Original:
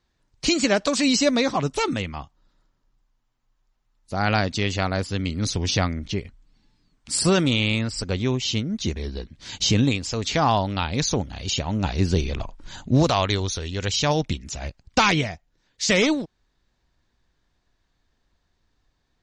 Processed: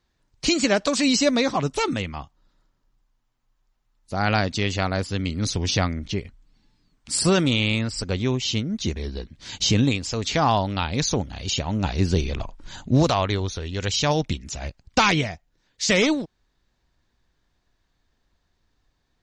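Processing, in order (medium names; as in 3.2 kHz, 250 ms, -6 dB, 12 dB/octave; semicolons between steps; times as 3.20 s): 13.13–13.73 s: treble shelf 3.7 kHz -> 5.1 kHz -11 dB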